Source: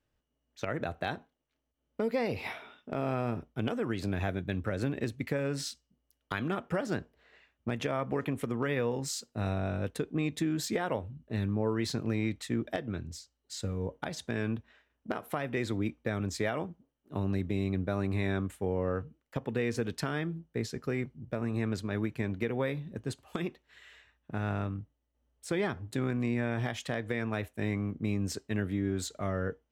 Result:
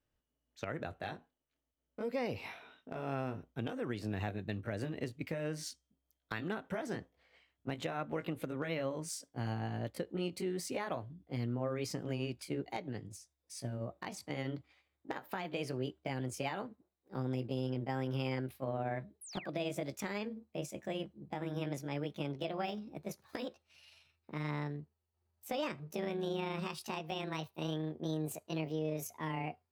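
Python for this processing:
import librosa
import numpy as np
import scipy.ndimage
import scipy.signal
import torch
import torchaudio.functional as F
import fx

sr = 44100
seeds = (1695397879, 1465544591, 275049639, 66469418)

y = fx.pitch_glide(x, sr, semitones=8.0, runs='starting unshifted')
y = fx.spec_paint(y, sr, seeds[0], shape='fall', start_s=19.21, length_s=0.27, low_hz=1400.0, high_hz=12000.0, level_db=-45.0)
y = F.gain(torch.from_numpy(y), -5.0).numpy()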